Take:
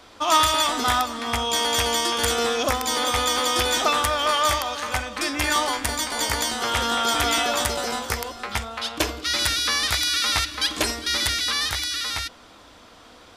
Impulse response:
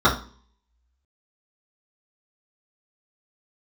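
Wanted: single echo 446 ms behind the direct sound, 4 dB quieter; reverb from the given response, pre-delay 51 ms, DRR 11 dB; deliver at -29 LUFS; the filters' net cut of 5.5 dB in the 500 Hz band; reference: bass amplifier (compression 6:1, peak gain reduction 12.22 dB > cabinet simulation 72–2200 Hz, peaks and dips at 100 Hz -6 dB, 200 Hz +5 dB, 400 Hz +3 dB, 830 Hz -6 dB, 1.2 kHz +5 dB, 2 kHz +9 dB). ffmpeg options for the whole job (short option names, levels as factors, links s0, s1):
-filter_complex "[0:a]equalizer=f=500:t=o:g=-7,aecho=1:1:446:0.631,asplit=2[s0][s1];[1:a]atrim=start_sample=2205,adelay=51[s2];[s1][s2]afir=irnorm=-1:irlink=0,volume=0.0237[s3];[s0][s3]amix=inputs=2:normalize=0,acompressor=threshold=0.0447:ratio=6,highpass=f=72:w=0.5412,highpass=f=72:w=1.3066,equalizer=f=100:t=q:w=4:g=-6,equalizer=f=200:t=q:w=4:g=5,equalizer=f=400:t=q:w=4:g=3,equalizer=f=830:t=q:w=4:g=-6,equalizer=f=1200:t=q:w=4:g=5,equalizer=f=2000:t=q:w=4:g=9,lowpass=f=2200:w=0.5412,lowpass=f=2200:w=1.3066,volume=1.06"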